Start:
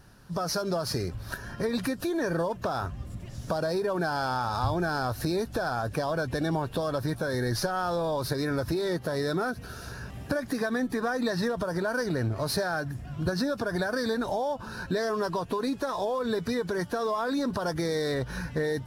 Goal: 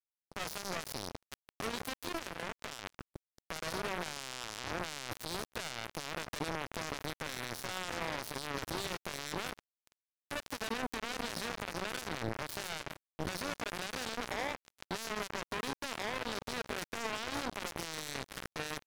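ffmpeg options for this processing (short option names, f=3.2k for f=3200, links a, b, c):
-filter_complex "[0:a]asplit=2[a][b];[b]adelay=151.6,volume=-11dB,highshelf=f=4k:g=-3.41[c];[a][c]amix=inputs=2:normalize=0,alimiter=level_in=1dB:limit=-24dB:level=0:latency=1:release=20,volume=-1dB,asettb=1/sr,asplit=3[d][e][f];[d]atrim=end=2.094[g];[e]atrim=start=2.09:end=3.1,asetpts=PTS-STARTPTS,afade=t=in:d=0.004:c=qsin,afade=t=out:st=1.006:d=0.004:c=qsin,equalizer=f=220:t=o:w=0.23:g=-12.5[h];[f]atrim=start=3.096[i];[g][h]acrossfade=d=0.004:c1=hsin:c2=qsin[j];[j][i]acrossfade=d=0.004:c1=qsin:c2=hsin,acrusher=bits=3:mix=0:aa=0.5,volume=8.5dB"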